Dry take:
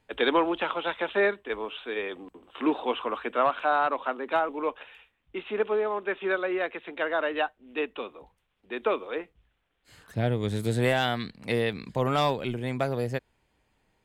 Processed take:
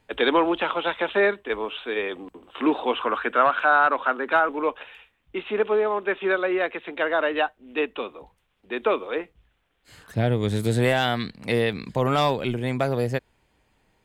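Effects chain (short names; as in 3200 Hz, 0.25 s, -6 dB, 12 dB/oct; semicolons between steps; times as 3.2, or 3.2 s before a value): 3.01–4.59 bell 1500 Hz +8.5 dB 0.54 oct; in parallel at -2.5 dB: limiter -18 dBFS, peak gain reduction 9 dB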